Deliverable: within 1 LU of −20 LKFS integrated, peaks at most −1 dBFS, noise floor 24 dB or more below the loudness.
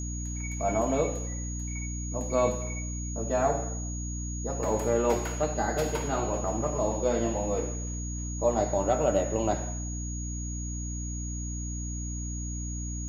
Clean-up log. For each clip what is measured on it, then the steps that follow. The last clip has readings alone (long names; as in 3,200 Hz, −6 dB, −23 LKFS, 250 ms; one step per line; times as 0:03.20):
mains hum 60 Hz; hum harmonics up to 300 Hz; level of the hum −32 dBFS; interfering tone 6,700 Hz; level of the tone −39 dBFS; integrated loudness −30.0 LKFS; sample peak −12.0 dBFS; target loudness −20.0 LKFS
→ hum removal 60 Hz, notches 5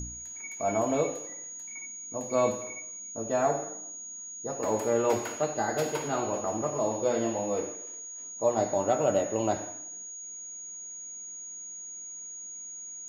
mains hum none found; interfering tone 6,700 Hz; level of the tone −39 dBFS
→ notch filter 6,700 Hz, Q 30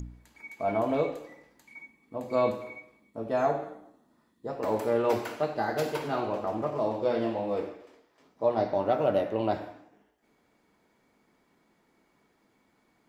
interfering tone none found; integrated loudness −29.5 LKFS; sample peak −13.0 dBFS; target loudness −20.0 LKFS
→ level +9.5 dB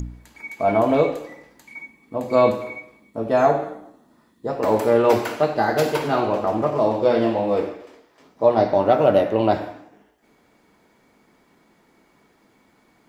integrated loudness −20.0 LKFS; sample peak −3.5 dBFS; background noise floor −60 dBFS